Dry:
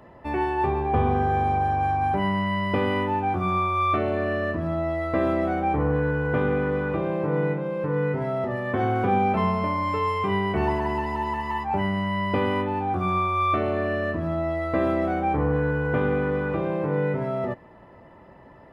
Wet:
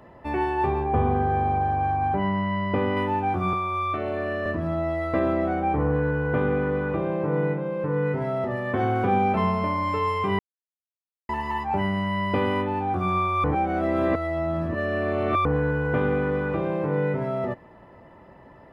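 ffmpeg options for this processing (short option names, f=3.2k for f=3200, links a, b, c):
-filter_complex "[0:a]asettb=1/sr,asplit=3[a][b][c];[a]atrim=end=0.844[d];[b]atrim=start=0.84:end=2.97,asetpts=PTS-STARTPTS,afade=t=in:d=0.004:c=qsin,afade=t=out:st=2.126:d=0.004:c=qsin,lowpass=f=1.9k:p=1[e];[c]atrim=start=2.966[f];[d][e]acrossfade=d=0.004:c1=hsin:c2=qsin[g];[g][f]acrossfade=d=0.004:c1=qsin:c2=hsin,asettb=1/sr,asplit=3[h][i][j];[h]atrim=end=3.534[k];[i]atrim=start=3.53:end=4.46,asetpts=PTS-STARTPTS,afade=t=in:d=0.004:c=qsin,afade=t=out:st=0.926:d=0.004:c=qsin,acrossover=split=130|300[l][m][n];[l]acompressor=threshold=-40dB:ratio=4[o];[m]acompressor=threshold=-41dB:ratio=4[p];[n]acompressor=threshold=-25dB:ratio=4[q];[o][p][q]amix=inputs=3:normalize=0[r];[j]atrim=start=4.456[s];[k][r]acrossfade=d=0.004:c1=hsin:c2=qsin[t];[t][s]acrossfade=d=0.004:c1=qsin:c2=hsin,asettb=1/sr,asplit=3[u][v][w];[u]atrim=end=5.194[x];[v]atrim=start=5.19:end=8.06,asetpts=PTS-STARTPTS,afade=t=in:d=0.004:c=qsin,afade=t=out:st=2.866:d=0.004:c=qsin,highshelf=f=3.7k:g=-7[y];[w]atrim=start=8.056[z];[x][y]acrossfade=d=0.004:c1=hsin:c2=qsin[aa];[aa][z]acrossfade=d=0.004:c1=qsin:c2=hsin,asplit=5[ab][ac][ad][ae][af];[ab]atrim=end=10.39,asetpts=PTS-STARTPTS,afade=t=out:st=10.386:d=0.004:c=hsin[ag];[ac]atrim=start=10.39:end=11.29,asetpts=PTS-STARTPTS,volume=0[ah];[ad]atrim=start=11.29:end=13.442,asetpts=PTS-STARTPTS,afade=t=in:d=0.004:c=hsin[ai];[ae]atrim=start=13.438:end=15.452,asetpts=PTS-STARTPTS,areverse[aj];[af]atrim=start=15.448[ak];[ag][ah][ai]concat=n=3:v=0:a=1[al];[al][aj]acrossfade=d=0.004:c1=hsin:c2=hsin[am];[am][ak]acrossfade=d=0.004:c1=hsin:c2=hsin"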